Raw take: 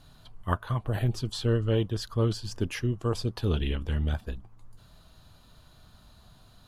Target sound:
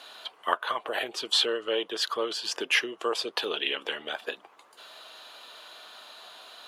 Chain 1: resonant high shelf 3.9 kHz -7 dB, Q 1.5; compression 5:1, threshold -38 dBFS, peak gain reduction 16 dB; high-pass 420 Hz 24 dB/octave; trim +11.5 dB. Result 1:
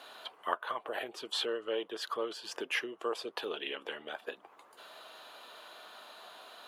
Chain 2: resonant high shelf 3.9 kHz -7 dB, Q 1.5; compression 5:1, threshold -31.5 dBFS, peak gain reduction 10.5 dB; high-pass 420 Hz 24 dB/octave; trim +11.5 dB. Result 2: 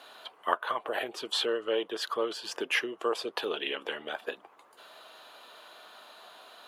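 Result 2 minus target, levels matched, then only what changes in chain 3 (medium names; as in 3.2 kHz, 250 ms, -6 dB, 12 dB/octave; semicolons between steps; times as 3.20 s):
4 kHz band -3.0 dB
add after high-pass: peaking EQ 5 kHz +7.5 dB 2.4 oct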